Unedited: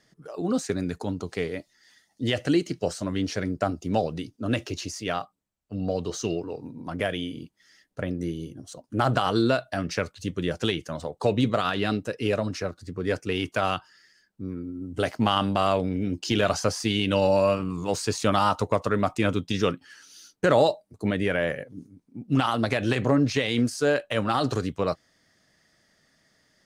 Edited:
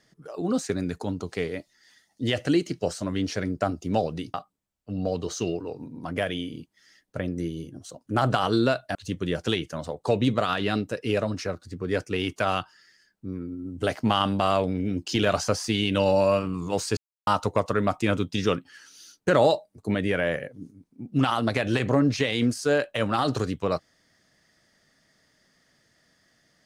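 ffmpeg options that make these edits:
ffmpeg -i in.wav -filter_complex "[0:a]asplit=5[link_01][link_02][link_03][link_04][link_05];[link_01]atrim=end=4.342[link_06];[link_02]atrim=start=5.168:end=9.782[link_07];[link_03]atrim=start=10.108:end=18.13,asetpts=PTS-STARTPTS,afade=type=out:start_time=8.018:duration=0.004:curve=hsin[link_08];[link_04]atrim=start=18.13:end=18.43,asetpts=PTS-STARTPTS,volume=0[link_09];[link_05]atrim=start=18.43,asetpts=PTS-STARTPTS,afade=type=in:duration=0.004:curve=hsin[link_10];[link_06][link_07]acrossfade=duration=0.004:curve1=hsin:curve2=hsin[link_11];[link_08][link_09][link_10]concat=n=3:v=0:a=1[link_12];[link_11][link_12]acrossfade=duration=0.004:curve1=hsin:curve2=hsin" out.wav

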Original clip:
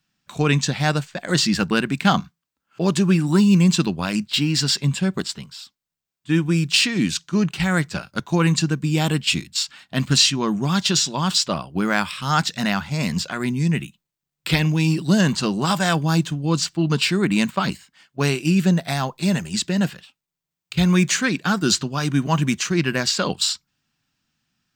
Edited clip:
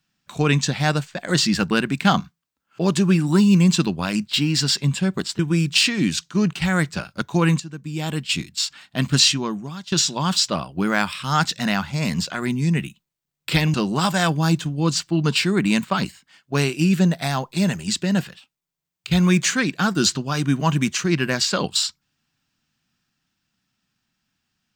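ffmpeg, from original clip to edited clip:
ffmpeg -i in.wav -filter_complex "[0:a]asplit=5[link_01][link_02][link_03][link_04][link_05];[link_01]atrim=end=5.392[link_06];[link_02]atrim=start=6.368:end=8.58,asetpts=PTS-STARTPTS,afade=type=out:start_time=2.208:duration=0.004:curve=hsin:silence=0.125893[link_07];[link_03]atrim=start=8.58:end=10.9,asetpts=PTS-STARTPTS,afade=type=in:duration=1.06:silence=0.125893,afade=type=out:start_time=1.74:duration=0.58:curve=qua:silence=0.141254[link_08];[link_04]atrim=start=10.9:end=14.722,asetpts=PTS-STARTPTS,afade=type=in:duration=0.004:curve=hsin:silence=0.141254[link_09];[link_05]atrim=start=15.398[link_10];[link_07][link_08][link_09]concat=n=3:v=0:a=1[link_11];[link_06][link_11]acrossfade=duration=0.004:curve1=hsin:curve2=hsin[link_12];[link_12][link_10]acrossfade=duration=0.004:curve1=hsin:curve2=hsin" out.wav

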